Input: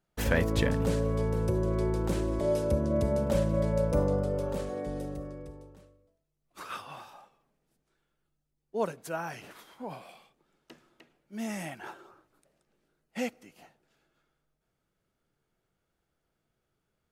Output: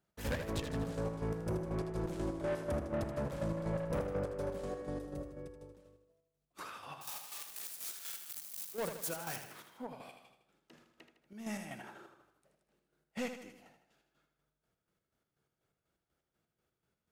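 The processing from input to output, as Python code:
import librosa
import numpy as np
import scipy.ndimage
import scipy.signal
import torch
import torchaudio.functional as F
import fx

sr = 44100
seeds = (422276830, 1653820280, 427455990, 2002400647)

y = fx.crossing_spikes(x, sr, level_db=-26.5, at=(7.01, 9.36))
y = scipy.signal.sosfilt(scipy.signal.butter(2, 50.0, 'highpass', fs=sr, output='sos'), y)
y = 10.0 ** (-29.5 / 20.0) * np.tanh(y / 10.0 ** (-29.5 / 20.0))
y = fx.chopper(y, sr, hz=4.1, depth_pct=60, duty_pct=45)
y = fx.echo_feedback(y, sr, ms=79, feedback_pct=51, wet_db=-8.5)
y = F.gain(torch.from_numpy(y), -2.0).numpy()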